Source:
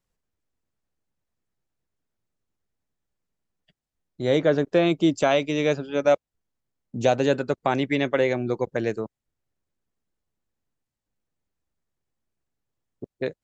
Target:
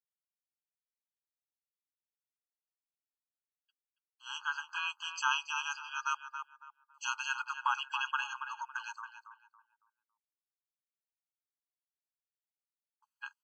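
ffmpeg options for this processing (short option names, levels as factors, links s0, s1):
-filter_complex "[0:a]afreqshift=-59,agate=range=0.0224:threshold=0.00178:ratio=3:detection=peak,asplit=2[s0][s1];[s1]adelay=278,lowpass=f=1500:p=1,volume=0.531,asplit=2[s2][s3];[s3]adelay=278,lowpass=f=1500:p=1,volume=0.35,asplit=2[s4][s5];[s5]adelay=278,lowpass=f=1500:p=1,volume=0.35,asplit=2[s6][s7];[s7]adelay=278,lowpass=f=1500:p=1,volume=0.35[s8];[s2][s4][s6][s8]amix=inputs=4:normalize=0[s9];[s0][s9]amix=inputs=2:normalize=0,afftfilt=real='re*eq(mod(floor(b*sr/1024/830),2),1)':imag='im*eq(mod(floor(b*sr/1024/830),2),1)':win_size=1024:overlap=0.75"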